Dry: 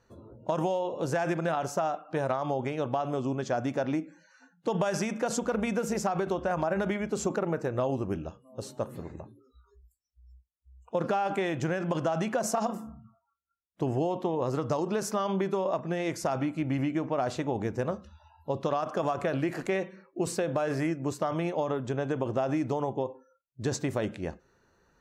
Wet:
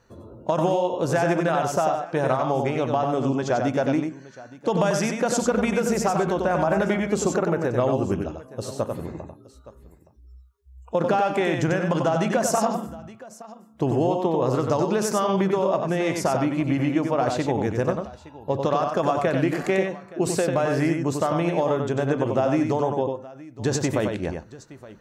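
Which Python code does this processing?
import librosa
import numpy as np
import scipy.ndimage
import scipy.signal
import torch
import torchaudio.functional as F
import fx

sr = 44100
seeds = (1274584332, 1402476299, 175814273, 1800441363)

y = fx.echo_multitap(x, sr, ms=(94, 869), db=(-5.0, -19.0))
y = y * 10.0 ** (6.0 / 20.0)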